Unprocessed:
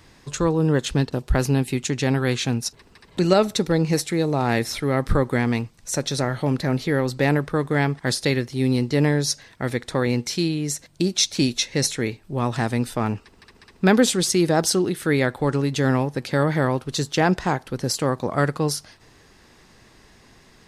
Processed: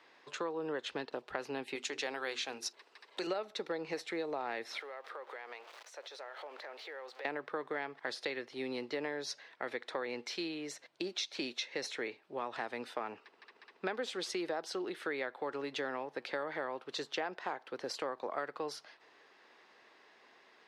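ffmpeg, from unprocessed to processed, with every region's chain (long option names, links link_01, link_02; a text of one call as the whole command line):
ffmpeg -i in.wav -filter_complex "[0:a]asettb=1/sr,asplit=3[link_01][link_02][link_03];[link_01]atrim=end=1.754[link_04];[link_02]atrim=start=1.75:end=3.27,asetpts=PTS-STARTPTS,afade=type=in:duration=0.004:curve=qsin,afade=type=out:start_time=1.516:duration=0.004:curve=qsin,bass=frequency=250:gain=-9,treble=frequency=4000:gain=9,bandreject=frequency=50:width_type=h:width=6,bandreject=frequency=100:width_type=h:width=6,bandreject=frequency=150:width_type=h:width=6,bandreject=frequency=200:width_type=h:width=6,bandreject=frequency=250:width_type=h:width=6,bandreject=frequency=300:width_type=h:width=6,bandreject=frequency=350:width_type=h:width=6,bandreject=frequency=400:width_type=h:width=6,bandreject=frequency=450:width_type=h:width=6[link_05];[link_03]atrim=start=3.266[link_06];[link_04][link_05]acrossfade=duration=0.004:curve1=hsin:curve2=qsin[link_07];[link_07][link_06]acrossfade=duration=0.004:curve1=qsin:curve2=hsin,asettb=1/sr,asplit=3[link_08][link_09][link_10];[link_08]atrim=end=4.794[link_11];[link_09]atrim=start=4.79:end=7.25,asetpts=PTS-STARTPTS,afade=type=in:duration=0.004:curve=qsin,afade=type=out:start_time=2.456:duration=0.004:curve=qsin,aeval=exprs='val(0)+0.5*0.02*sgn(val(0))':channel_layout=same,highpass=frequency=440:width=0.5412,highpass=frequency=440:width=1.3066,acompressor=threshold=-36dB:ratio=5:attack=3.2:release=140:knee=1:detection=peak[link_12];[link_10]atrim=start=7.246[link_13];[link_11][link_12]acrossfade=duration=0.004:curve1=hsin:curve2=qsin[link_14];[link_14][link_13]acrossfade=duration=0.004:curve1=qsin:curve2=hsin,highpass=250,acrossover=split=370 4200:gain=0.141 1 0.0891[link_15][link_16][link_17];[link_15][link_16][link_17]amix=inputs=3:normalize=0,acompressor=threshold=-28dB:ratio=6,volume=-6dB" out.wav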